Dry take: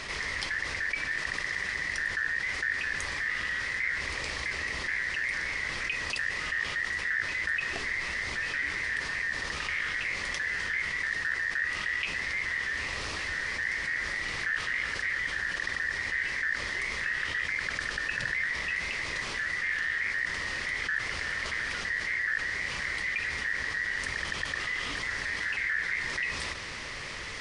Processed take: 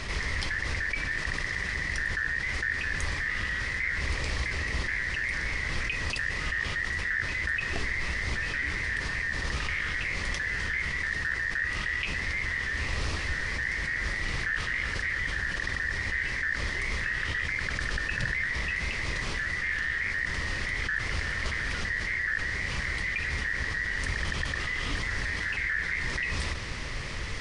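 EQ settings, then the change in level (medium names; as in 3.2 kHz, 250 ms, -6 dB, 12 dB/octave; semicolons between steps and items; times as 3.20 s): bass shelf 120 Hz +8 dB; bass shelf 300 Hz +7 dB; 0.0 dB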